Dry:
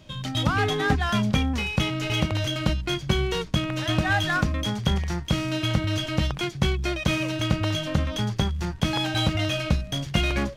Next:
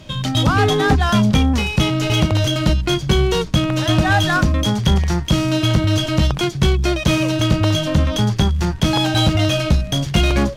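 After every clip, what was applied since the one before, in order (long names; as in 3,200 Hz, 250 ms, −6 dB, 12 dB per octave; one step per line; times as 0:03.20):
dynamic equaliser 2,100 Hz, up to −6 dB, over −41 dBFS, Q 1.2
in parallel at −4 dB: sine wavefolder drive 7 dB, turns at −7.5 dBFS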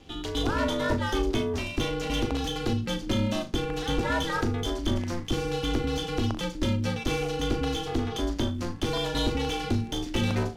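ring modulation 170 Hz
flutter between parallel walls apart 6.7 metres, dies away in 0.23 s
level −9 dB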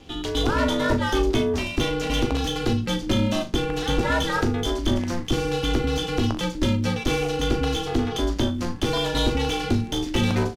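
double-tracking delay 16 ms −12 dB
level +4.5 dB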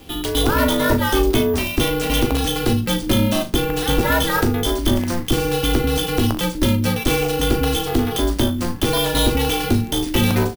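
bad sample-rate conversion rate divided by 3×, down none, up hold
high-shelf EQ 6,100 Hz +5 dB
level +4.5 dB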